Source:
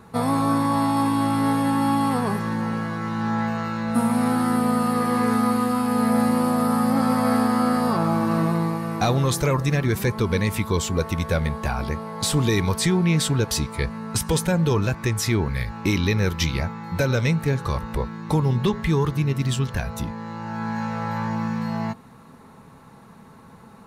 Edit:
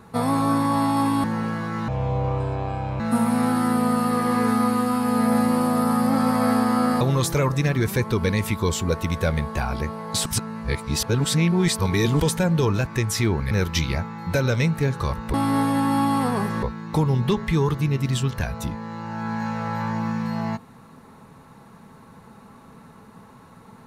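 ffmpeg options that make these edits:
-filter_complex "[0:a]asplit=10[s0][s1][s2][s3][s4][s5][s6][s7][s8][s9];[s0]atrim=end=1.242[s10];[s1]atrim=start=2.528:end=3.174[s11];[s2]atrim=start=3.17:end=3.83,asetpts=PTS-STARTPTS,asetrate=26019,aresample=44100,atrim=end_sample=49332,asetpts=PTS-STARTPTS[s12];[s3]atrim=start=3.826:end=7.842[s13];[s4]atrim=start=9.088:end=12.342[s14];[s5]atrim=start=12.338:end=14.282,asetpts=PTS-STARTPTS,areverse[s15];[s6]atrim=start=14.278:end=15.592[s16];[s7]atrim=start=16.158:end=17.992[s17];[s8]atrim=start=1.238:end=2.532[s18];[s9]atrim=start=17.988[s19];[s10][s11]acrossfade=d=0.004:c1=hsin:c2=hsin[s20];[s20][s12]acrossfade=d=0.004:c1=hsin:c2=hsin[s21];[s21][s13]acrossfade=d=0.004:c1=hsin:c2=hsin[s22];[s22][s14]acrossfade=d=0.004:c1=hsin:c2=hsin[s23];[s23][s15]acrossfade=d=0.004:c1=hsin:c2=hsin[s24];[s24][s16]acrossfade=d=0.004:c1=hsin:c2=hsin[s25];[s25][s17]acrossfade=d=0.004:c1=hsin:c2=hsin[s26];[s26][s18]acrossfade=d=0.004:c1=hsin:c2=hsin[s27];[s27][s19]acrossfade=d=0.004:c1=hsin:c2=hsin"

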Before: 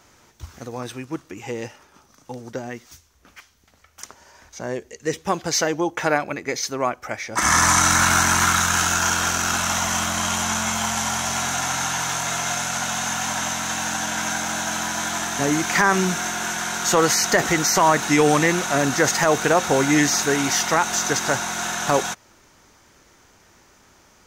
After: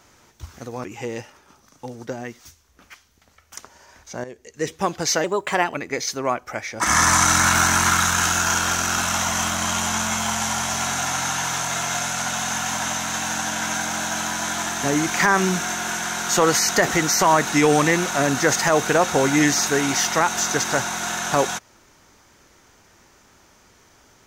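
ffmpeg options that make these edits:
-filter_complex "[0:a]asplit=5[s0][s1][s2][s3][s4];[s0]atrim=end=0.842[s5];[s1]atrim=start=1.298:end=4.7,asetpts=PTS-STARTPTS,afade=t=out:st=3.398:d=0.004:c=hsin:silence=0.237137[s6];[s2]atrim=start=4.7:end=5.704,asetpts=PTS-STARTPTS,afade=t=in:d=0.46:silence=0.237137[s7];[s3]atrim=start=5.7:end=6.3,asetpts=PTS-STARTPTS,asetrate=52479,aresample=44100,atrim=end_sample=22235,asetpts=PTS-STARTPTS[s8];[s4]atrim=start=6.296[s9];[s6][s7]concat=n=2:v=0:a=1[s10];[s5][s10]acrossfade=d=0.004:c1=hsin:c2=hsin[s11];[s11][s8]acrossfade=d=0.004:c1=hsin:c2=hsin[s12];[s12][s9]acrossfade=d=0.004:c1=hsin:c2=hsin"

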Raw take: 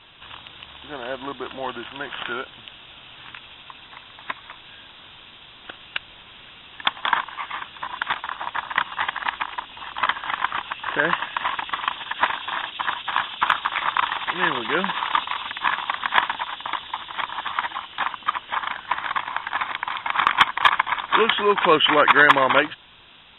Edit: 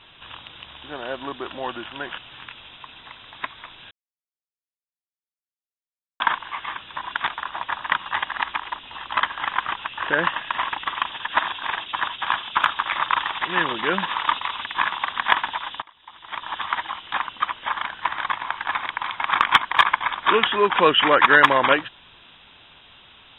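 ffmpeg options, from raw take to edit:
-filter_complex "[0:a]asplit=7[s0][s1][s2][s3][s4][s5][s6];[s0]atrim=end=2.182[s7];[s1]atrim=start=3.038:end=4.77,asetpts=PTS-STARTPTS,afade=t=out:st=1.728:d=0.004:c=hsin[s8];[s2]atrim=start=4.77:end=7.06,asetpts=PTS-STARTPTS,volume=0[s9];[s3]atrim=start=7.06:end=12.252,asetpts=PTS-STARTPTS,afade=t=in:d=0.004:c=hsin[s10];[s4]atrim=start=12.248:end=12.612,asetpts=PTS-STARTPTS,areverse[s11];[s5]atrim=start=12.608:end=16.68,asetpts=PTS-STARTPTS,afade=t=out:st=4.068:d=0.004:c=hsin:silence=0.0630957[s12];[s6]atrim=start=16.68,asetpts=PTS-STARTPTS,afade=t=in:d=0.71:c=qua:silence=0.0630957[s13];[s8][s9][s10]concat=n=3:v=0:a=1[s14];[s7][s14]acrossfade=d=0.004:c1=hsin:c2=hsin[s15];[s15][s11]acrossfade=d=0.004:c1=hsin:c2=hsin[s16];[s12][s13]concat=n=2:v=0:a=1[s17];[s16][s17]acrossfade=d=0.004:c1=hsin:c2=hsin"

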